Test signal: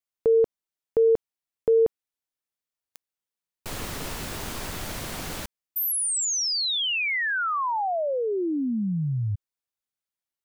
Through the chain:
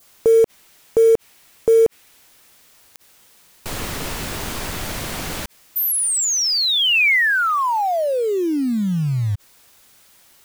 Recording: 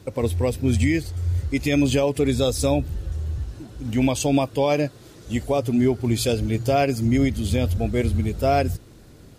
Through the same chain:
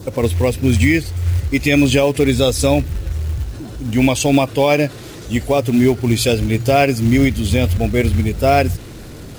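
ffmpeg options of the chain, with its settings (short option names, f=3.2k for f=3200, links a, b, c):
-af "acrusher=bits=6:mode=log:mix=0:aa=0.000001,adynamicequalizer=threshold=0.01:dfrequency=2300:dqfactor=1.4:tfrequency=2300:tqfactor=1.4:attack=5:release=100:ratio=0.375:range=2.5:mode=boostabove:tftype=bell,acompressor=mode=upward:threshold=-29dB:ratio=2.5:attack=0.14:release=31:knee=2.83:detection=peak,volume=6dB"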